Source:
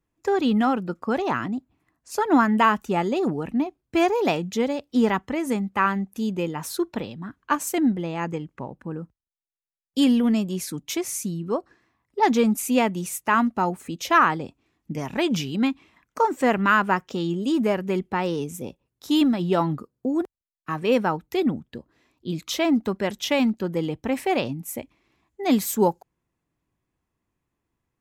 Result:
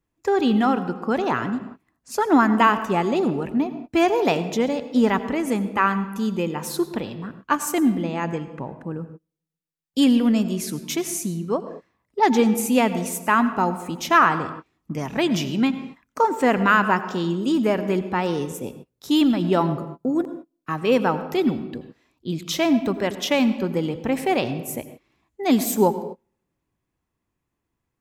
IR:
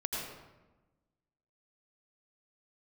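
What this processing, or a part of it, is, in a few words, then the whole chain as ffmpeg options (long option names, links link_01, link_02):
keyed gated reverb: -filter_complex "[0:a]asplit=3[link_01][link_02][link_03];[1:a]atrim=start_sample=2205[link_04];[link_02][link_04]afir=irnorm=-1:irlink=0[link_05];[link_03]apad=whole_len=1234893[link_06];[link_05][link_06]sidechaingate=range=-33dB:threshold=-49dB:ratio=16:detection=peak,volume=-12.5dB[link_07];[link_01][link_07]amix=inputs=2:normalize=0"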